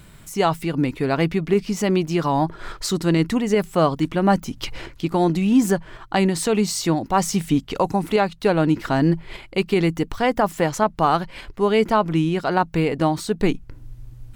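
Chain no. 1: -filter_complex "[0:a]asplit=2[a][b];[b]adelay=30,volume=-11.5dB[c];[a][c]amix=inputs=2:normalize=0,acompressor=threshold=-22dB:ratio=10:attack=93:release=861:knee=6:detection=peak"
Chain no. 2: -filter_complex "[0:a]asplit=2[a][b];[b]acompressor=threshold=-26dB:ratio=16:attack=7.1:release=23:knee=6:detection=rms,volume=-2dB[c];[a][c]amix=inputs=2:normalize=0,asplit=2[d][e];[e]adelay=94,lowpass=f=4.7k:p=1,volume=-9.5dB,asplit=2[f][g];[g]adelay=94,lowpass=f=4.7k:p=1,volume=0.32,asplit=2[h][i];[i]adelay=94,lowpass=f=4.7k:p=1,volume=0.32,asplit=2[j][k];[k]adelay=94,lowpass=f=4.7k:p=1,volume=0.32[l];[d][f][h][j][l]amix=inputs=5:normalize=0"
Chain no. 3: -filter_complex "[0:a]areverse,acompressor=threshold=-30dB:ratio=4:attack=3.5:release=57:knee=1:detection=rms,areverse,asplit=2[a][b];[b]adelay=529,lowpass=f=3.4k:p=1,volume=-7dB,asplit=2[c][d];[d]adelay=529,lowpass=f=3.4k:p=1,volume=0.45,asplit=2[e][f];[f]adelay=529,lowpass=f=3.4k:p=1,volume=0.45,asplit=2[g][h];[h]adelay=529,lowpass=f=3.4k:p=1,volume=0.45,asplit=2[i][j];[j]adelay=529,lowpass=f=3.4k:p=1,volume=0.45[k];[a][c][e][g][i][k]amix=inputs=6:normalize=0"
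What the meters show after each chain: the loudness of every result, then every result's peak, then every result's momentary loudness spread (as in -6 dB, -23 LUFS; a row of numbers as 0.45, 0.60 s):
-26.0, -19.0, -32.5 LUFS; -8.5, -3.5, -18.5 dBFS; 6, 7, 4 LU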